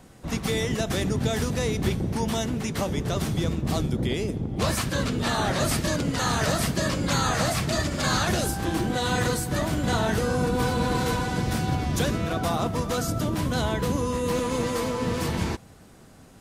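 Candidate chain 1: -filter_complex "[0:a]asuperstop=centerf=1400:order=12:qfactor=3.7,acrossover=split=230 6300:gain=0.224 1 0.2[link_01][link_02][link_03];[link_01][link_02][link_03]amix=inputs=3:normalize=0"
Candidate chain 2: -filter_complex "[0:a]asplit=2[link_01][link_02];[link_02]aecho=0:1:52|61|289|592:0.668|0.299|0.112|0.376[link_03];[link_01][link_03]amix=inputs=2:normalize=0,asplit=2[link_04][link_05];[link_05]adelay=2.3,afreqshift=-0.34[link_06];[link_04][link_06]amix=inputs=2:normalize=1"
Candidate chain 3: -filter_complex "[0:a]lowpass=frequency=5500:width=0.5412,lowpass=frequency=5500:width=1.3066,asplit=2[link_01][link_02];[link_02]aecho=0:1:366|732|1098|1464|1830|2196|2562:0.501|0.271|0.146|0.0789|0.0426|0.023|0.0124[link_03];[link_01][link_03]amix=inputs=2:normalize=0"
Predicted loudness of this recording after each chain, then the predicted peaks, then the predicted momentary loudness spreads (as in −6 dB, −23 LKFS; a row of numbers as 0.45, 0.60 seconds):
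−29.0, −26.5, −25.0 LKFS; −12.5, −12.5, −10.0 dBFS; 5, 4, 3 LU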